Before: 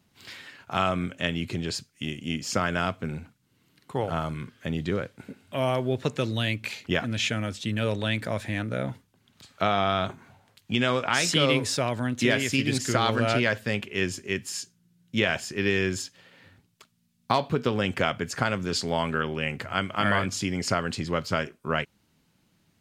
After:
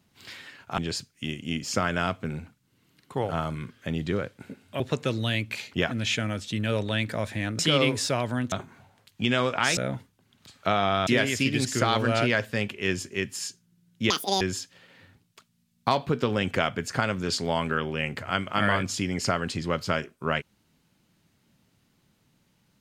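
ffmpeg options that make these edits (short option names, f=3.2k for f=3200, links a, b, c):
-filter_complex "[0:a]asplit=9[a][b][c][d][e][f][g][h][i];[a]atrim=end=0.782[j];[b]atrim=start=1.568:end=5.592[k];[c]atrim=start=5.928:end=8.722[l];[d]atrim=start=11.268:end=12.202[m];[e]atrim=start=10.018:end=11.272[n];[f]atrim=start=8.718:end=10.022[o];[g]atrim=start=12.198:end=15.234[p];[h]atrim=start=15.23:end=15.84,asetpts=PTS-STARTPTS,asetrate=86877,aresample=44100,atrim=end_sample=13655,asetpts=PTS-STARTPTS[q];[i]atrim=start=15.836[r];[j][k]acrossfade=d=0.004:c1=hsin:c2=hsin[s];[s][l]acrossfade=d=0.004:c1=hsin:c2=hsin[t];[t][m]acrossfade=d=0.004:c1=hsin:c2=hsin[u];[u][n]acrossfade=d=0.004:c1=hsin:c2=hsin[v];[v][o]acrossfade=d=0.004:c1=hsin:c2=hsin[w];[w][p]acrossfade=d=0.004:c1=hsin:c2=hsin[x];[x][q]acrossfade=d=0.004:c1=hsin:c2=hsin[y];[y][r]acrossfade=d=0.004:c1=hsin:c2=hsin"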